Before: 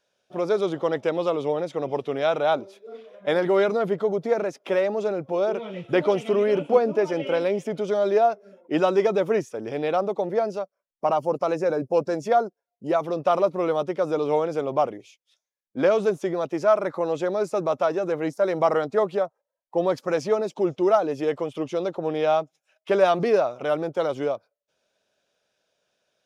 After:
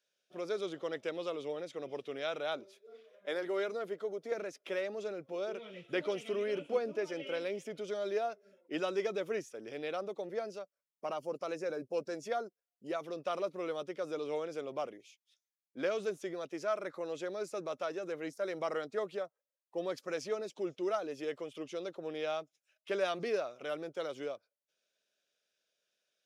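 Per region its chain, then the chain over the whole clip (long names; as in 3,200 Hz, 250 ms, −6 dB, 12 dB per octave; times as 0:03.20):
0:02.75–0:04.32: high-pass filter 260 Hz + parametric band 3,000 Hz −3.5 dB 1.6 octaves
whole clip: high-pass filter 580 Hz 6 dB per octave; parametric band 870 Hz −11.5 dB 1 octave; level −6.5 dB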